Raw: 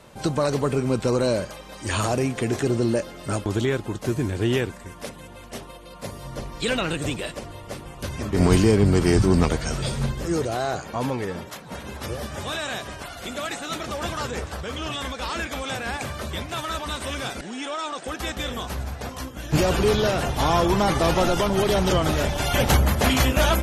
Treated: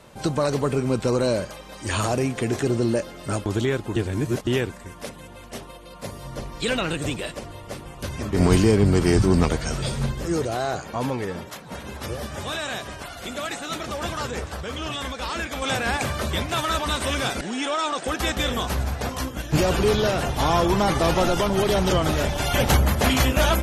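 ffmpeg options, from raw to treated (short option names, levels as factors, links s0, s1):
-filter_complex "[0:a]asplit=5[s0][s1][s2][s3][s4];[s0]atrim=end=3.962[s5];[s1]atrim=start=3.958:end=4.472,asetpts=PTS-STARTPTS,areverse[s6];[s2]atrim=start=4.468:end=15.622[s7];[s3]atrim=start=15.618:end=19.422,asetpts=PTS-STARTPTS,volume=1.78[s8];[s4]atrim=start=19.418[s9];[s5][s6]acrossfade=d=0.004:c1=hsin:c2=hsin[s10];[s10][s7]acrossfade=d=0.004:c1=hsin:c2=hsin[s11];[s11][s8]acrossfade=d=0.004:c1=hsin:c2=hsin[s12];[s12][s9]acrossfade=d=0.004:c1=hsin:c2=hsin"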